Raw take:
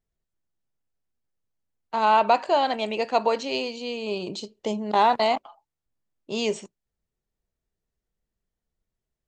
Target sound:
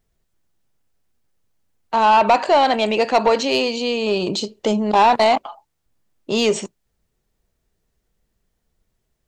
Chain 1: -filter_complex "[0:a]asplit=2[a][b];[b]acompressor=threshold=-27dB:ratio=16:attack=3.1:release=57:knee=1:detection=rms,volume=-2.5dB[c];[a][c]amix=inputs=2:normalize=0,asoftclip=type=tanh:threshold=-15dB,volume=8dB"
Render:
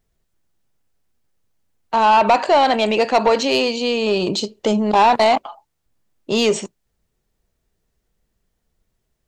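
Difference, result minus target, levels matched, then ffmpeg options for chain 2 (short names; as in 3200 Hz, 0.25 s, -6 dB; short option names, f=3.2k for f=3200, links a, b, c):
compressor: peak gain reduction -6.5 dB
-filter_complex "[0:a]asplit=2[a][b];[b]acompressor=threshold=-34dB:ratio=16:attack=3.1:release=57:knee=1:detection=rms,volume=-2.5dB[c];[a][c]amix=inputs=2:normalize=0,asoftclip=type=tanh:threshold=-15dB,volume=8dB"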